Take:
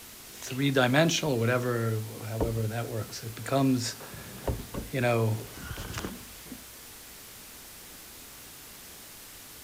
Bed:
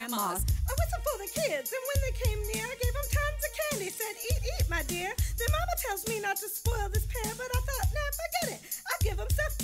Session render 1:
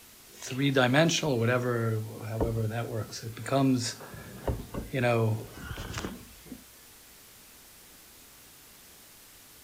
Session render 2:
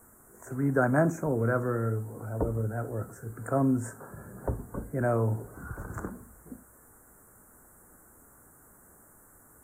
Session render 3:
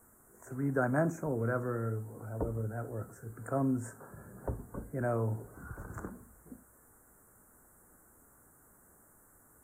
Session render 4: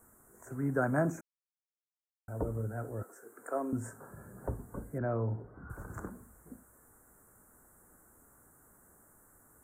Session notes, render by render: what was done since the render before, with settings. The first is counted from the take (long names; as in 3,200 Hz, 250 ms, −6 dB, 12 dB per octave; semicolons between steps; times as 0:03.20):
noise reduction from a noise print 6 dB
elliptic band-stop filter 1,500–8,000 Hz, stop band 60 dB; high-shelf EQ 8,400 Hz −4 dB
level −5.5 dB
0:01.21–0:02.28: silence; 0:03.03–0:03.73: high-pass filter 320 Hz 24 dB per octave; 0:04.98–0:05.70: high-frequency loss of the air 460 metres